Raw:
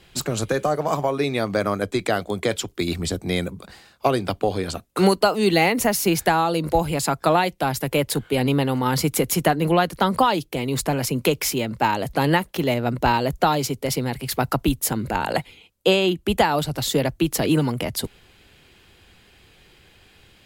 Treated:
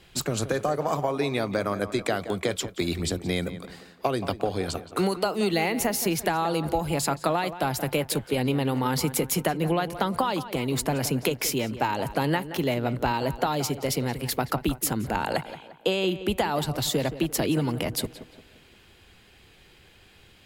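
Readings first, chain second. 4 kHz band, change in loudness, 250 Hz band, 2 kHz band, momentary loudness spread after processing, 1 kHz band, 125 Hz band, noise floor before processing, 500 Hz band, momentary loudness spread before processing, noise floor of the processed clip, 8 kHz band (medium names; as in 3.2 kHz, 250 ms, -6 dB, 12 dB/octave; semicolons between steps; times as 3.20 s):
-4.5 dB, -5.0 dB, -4.5 dB, -5.5 dB, 4 LU, -6.0 dB, -4.5 dB, -55 dBFS, -5.0 dB, 7 LU, -55 dBFS, -3.0 dB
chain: compression, threshold -19 dBFS, peak gain reduction 8 dB; tape echo 175 ms, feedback 47%, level -12 dB, low-pass 2.8 kHz; trim -2 dB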